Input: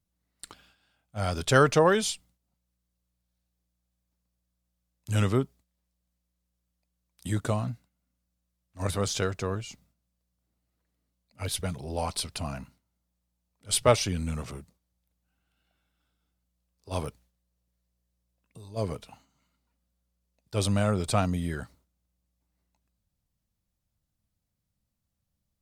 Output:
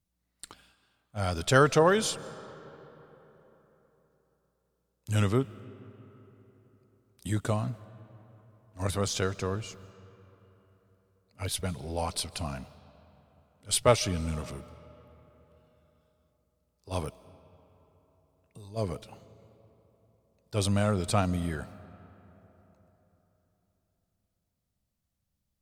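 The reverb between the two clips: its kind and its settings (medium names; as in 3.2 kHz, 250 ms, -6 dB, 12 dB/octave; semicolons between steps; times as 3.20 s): algorithmic reverb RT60 4 s, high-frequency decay 0.55×, pre-delay 110 ms, DRR 18.5 dB; trim -1 dB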